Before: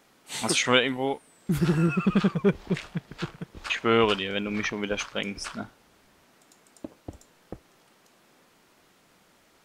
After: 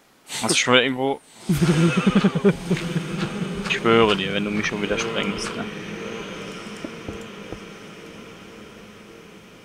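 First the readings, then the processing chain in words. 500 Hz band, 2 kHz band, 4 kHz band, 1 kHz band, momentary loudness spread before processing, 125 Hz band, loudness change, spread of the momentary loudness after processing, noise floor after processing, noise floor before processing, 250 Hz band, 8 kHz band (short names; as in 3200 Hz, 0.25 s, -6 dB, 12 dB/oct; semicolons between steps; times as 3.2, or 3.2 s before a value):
+5.5 dB, +5.5 dB, +5.5 dB, +5.5 dB, 18 LU, +5.5 dB, +5.0 dB, 21 LU, -47 dBFS, -62 dBFS, +5.5 dB, +5.5 dB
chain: diffused feedback echo 1.245 s, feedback 56%, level -11 dB; gain +5 dB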